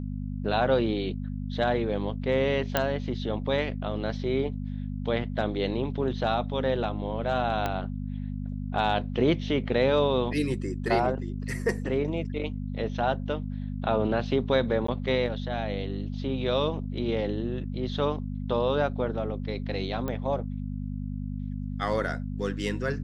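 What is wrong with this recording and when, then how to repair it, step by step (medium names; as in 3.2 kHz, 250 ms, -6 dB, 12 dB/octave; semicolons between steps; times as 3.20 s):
hum 50 Hz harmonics 5 -33 dBFS
2.77 s: pop -8 dBFS
7.66 s: pop -14 dBFS
14.87–14.88 s: dropout 14 ms
20.08 s: pop -19 dBFS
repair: de-click; de-hum 50 Hz, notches 5; interpolate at 14.87 s, 14 ms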